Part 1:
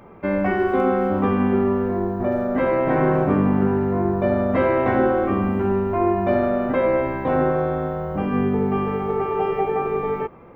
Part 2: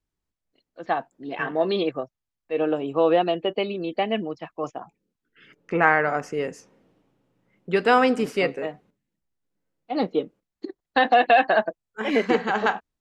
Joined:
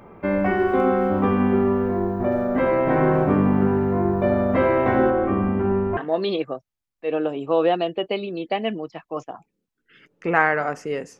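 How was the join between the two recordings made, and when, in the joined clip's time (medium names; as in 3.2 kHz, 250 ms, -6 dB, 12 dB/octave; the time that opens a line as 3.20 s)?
part 1
5.10–5.97 s: distance through air 280 m
5.97 s: go over to part 2 from 1.44 s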